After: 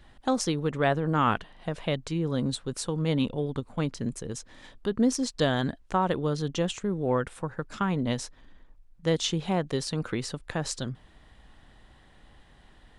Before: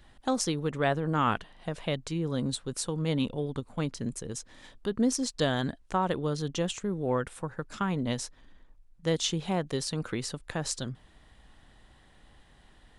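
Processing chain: high shelf 6300 Hz -6.5 dB; gain +2.5 dB

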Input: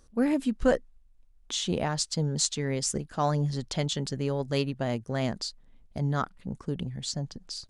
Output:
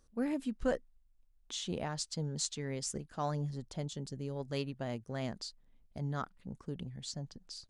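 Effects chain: 3.49–4.35 bell 4400 Hz -> 1300 Hz -8.5 dB 2.7 oct; gain -9 dB

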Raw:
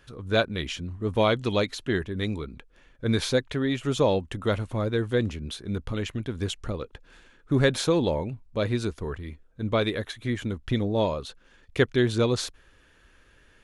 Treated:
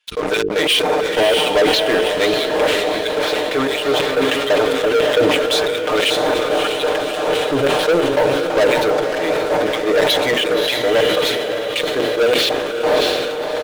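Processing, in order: wind noise 440 Hz -38 dBFS; treble ducked by the level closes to 480 Hz, closed at -18 dBFS; vocal rider within 5 dB 0.5 s; LFO high-pass square 3 Hz 540–2900 Hz; comb 6.6 ms, depth 90%; sample leveller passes 5; notches 50/100/150/200/250/300/350/400/450 Hz; diffused feedback echo 0.599 s, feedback 58%, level -6 dB; sustainer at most 25 dB/s; gain -3 dB

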